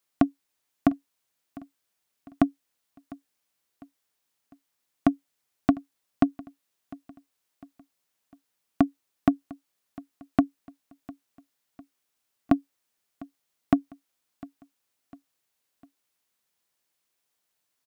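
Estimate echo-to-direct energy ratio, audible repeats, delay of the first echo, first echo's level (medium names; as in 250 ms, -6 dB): -20.0 dB, 3, 702 ms, -21.0 dB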